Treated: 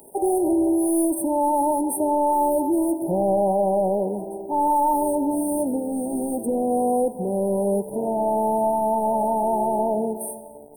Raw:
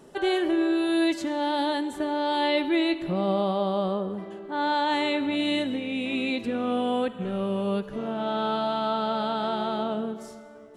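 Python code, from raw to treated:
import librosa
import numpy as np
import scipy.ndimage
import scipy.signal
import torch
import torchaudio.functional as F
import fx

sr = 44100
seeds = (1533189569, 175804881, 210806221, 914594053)

y = fx.riaa(x, sr, side='recording')
y = fx.leveller(y, sr, passes=3)
y = fx.brickwall_bandstop(y, sr, low_hz=970.0, high_hz=8400.0)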